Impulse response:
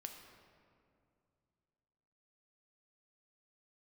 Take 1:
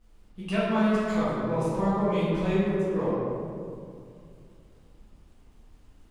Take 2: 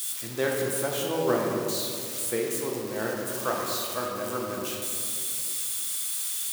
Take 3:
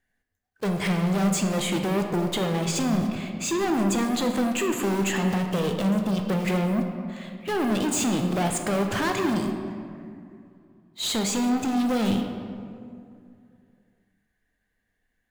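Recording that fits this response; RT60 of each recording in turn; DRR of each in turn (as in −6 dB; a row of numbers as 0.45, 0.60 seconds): 3; 2.4, 2.4, 2.4 seconds; −11.0, −2.5, 3.5 decibels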